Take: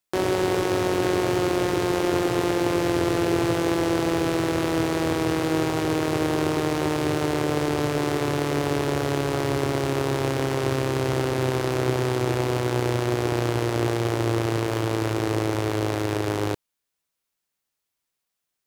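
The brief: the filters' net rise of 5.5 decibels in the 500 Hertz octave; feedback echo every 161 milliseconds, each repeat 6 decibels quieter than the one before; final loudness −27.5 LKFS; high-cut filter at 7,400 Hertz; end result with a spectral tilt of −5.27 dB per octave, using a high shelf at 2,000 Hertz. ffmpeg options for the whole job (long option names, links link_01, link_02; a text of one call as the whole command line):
ffmpeg -i in.wav -af "lowpass=7400,equalizer=frequency=500:width_type=o:gain=7.5,highshelf=frequency=2000:gain=-3.5,aecho=1:1:161|322|483|644|805|966:0.501|0.251|0.125|0.0626|0.0313|0.0157,volume=-8dB" out.wav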